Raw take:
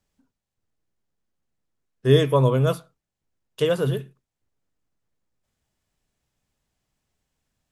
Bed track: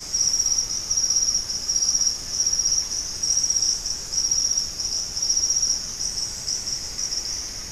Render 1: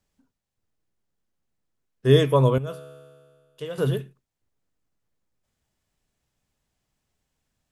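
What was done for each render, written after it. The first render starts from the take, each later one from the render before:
0:02.58–0:03.78: tuned comb filter 71 Hz, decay 1.9 s, mix 80%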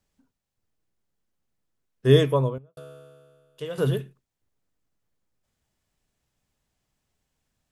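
0:02.13–0:02.77: fade out and dull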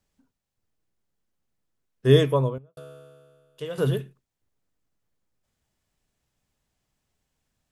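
no processing that can be heard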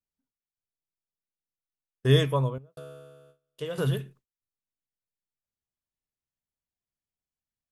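noise gate with hold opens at −45 dBFS
dynamic equaliser 380 Hz, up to −7 dB, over −31 dBFS, Q 0.78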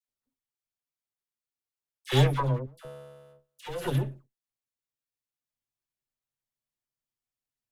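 lower of the sound and its delayed copy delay 8 ms
all-pass dispersion lows, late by 79 ms, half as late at 1,100 Hz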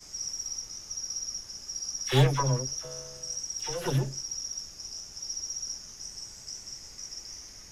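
mix in bed track −14.5 dB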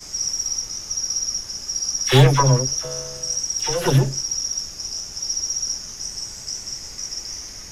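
level +11 dB
brickwall limiter −2 dBFS, peak gain reduction 3 dB

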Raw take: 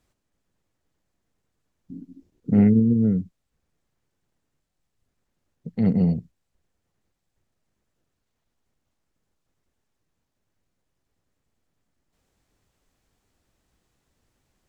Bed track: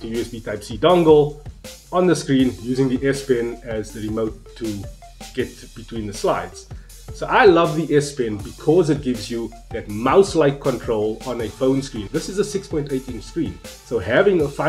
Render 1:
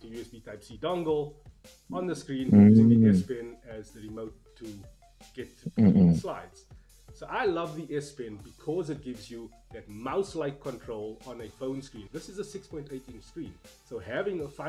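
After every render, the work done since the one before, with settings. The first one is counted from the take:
mix in bed track −16.5 dB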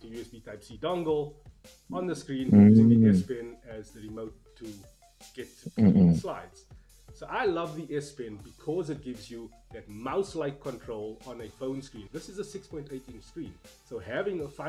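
0:04.72–0:05.82: bass and treble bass −5 dB, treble +6 dB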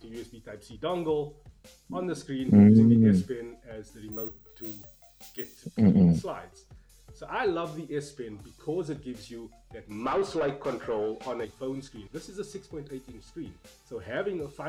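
0:04.12–0:05.57: bad sample-rate conversion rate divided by 2×, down filtered, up zero stuff
0:09.91–0:11.45: mid-hump overdrive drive 21 dB, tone 1,400 Hz, clips at −19 dBFS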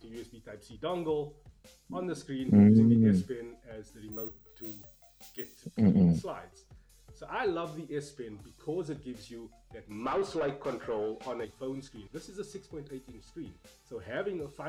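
level −3.5 dB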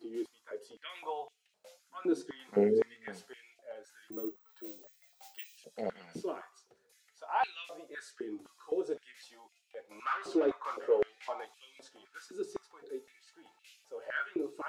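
flanger 0.88 Hz, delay 7.9 ms, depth 3.7 ms, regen −43%
high-pass on a step sequencer 3.9 Hz 330–2,600 Hz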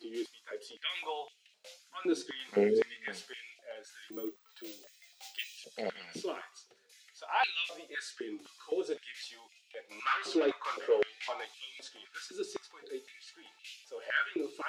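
meter weighting curve D

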